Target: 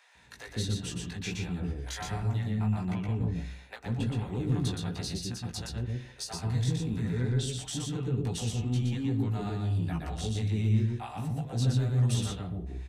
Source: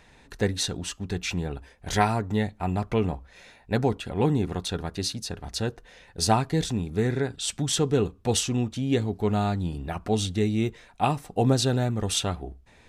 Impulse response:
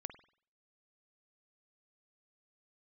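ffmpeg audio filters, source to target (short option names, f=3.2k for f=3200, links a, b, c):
-filter_complex "[0:a]highpass=52,equalizer=f=430:w=0.53:g=-3,acrossover=split=260[a][b];[b]acompressor=threshold=-33dB:ratio=6[c];[a][c]amix=inputs=2:normalize=0,flanger=delay=16:depth=2.1:speed=1.4,asoftclip=type=tanh:threshold=-21dB,acrossover=split=580[d][e];[d]adelay=150[f];[f][e]amix=inputs=2:normalize=0,asplit=2[g][h];[1:a]atrim=start_sample=2205,lowshelf=f=150:g=7.5,adelay=120[i];[h][i]afir=irnorm=-1:irlink=0,volume=1dB[j];[g][j]amix=inputs=2:normalize=0"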